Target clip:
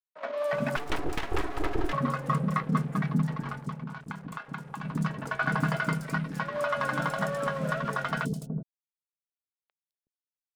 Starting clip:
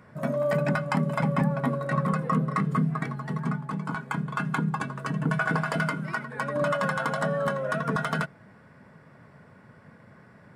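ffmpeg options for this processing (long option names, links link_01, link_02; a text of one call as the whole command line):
ffmpeg -i in.wav -filter_complex "[0:a]aeval=exprs='sgn(val(0))*max(abs(val(0))-0.01,0)':channel_layout=same,acrossover=split=430|5200[link_01][link_02][link_03];[link_03]adelay=210[link_04];[link_01]adelay=370[link_05];[link_05][link_02][link_04]amix=inputs=3:normalize=0,asettb=1/sr,asplit=3[link_06][link_07][link_08];[link_06]atrim=end=0.764[link_09];[link_07]atrim=start=0.76:end=1.93,asetpts=PTS-STARTPTS,afade=type=in:duration=0.004:curve=qsin,afade=type=out:start_time=1.166:duration=0.004:curve=qsin,aeval=exprs='abs(val(0))':channel_layout=same[link_10];[link_08]atrim=start=1.926[link_11];[link_09][link_10]acrossfade=duration=0.004:curve1=hsin:curve2=qsin[link_12];[link_12][link_11]acrossfade=duration=0.004:curve1=qsin:curve2=hsin,asettb=1/sr,asplit=3[link_13][link_14][link_15];[link_13]atrim=end=3.694[link_16];[link_14]atrim=start=3.69:end=4.85,asetpts=PTS-STARTPTS,afade=type=in:duration=0.004:curve=qsin,afade=type=out:start_time=1.156:duration=0.004:curve=qsin,acompressor=threshold=-34dB:ratio=10[link_17];[link_15]atrim=start=4.846[link_18];[link_16][link_17]acrossfade=duration=0.004:curve1=hsin:curve2=qsin[link_19];[link_19][link_18]acrossfade=duration=0.004:curve1=qsin:curve2=hsin" out.wav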